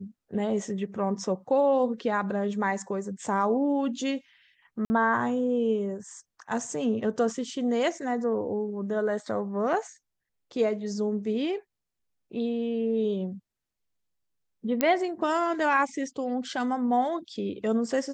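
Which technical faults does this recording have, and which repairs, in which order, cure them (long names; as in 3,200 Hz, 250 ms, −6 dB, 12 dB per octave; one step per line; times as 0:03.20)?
0:04.85–0:04.90: drop-out 50 ms
0:14.81: click −9 dBFS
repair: click removal
repair the gap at 0:04.85, 50 ms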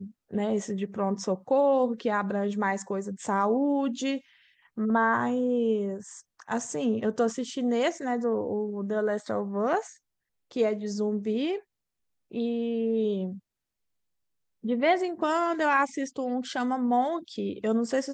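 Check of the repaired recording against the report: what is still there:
none of them is left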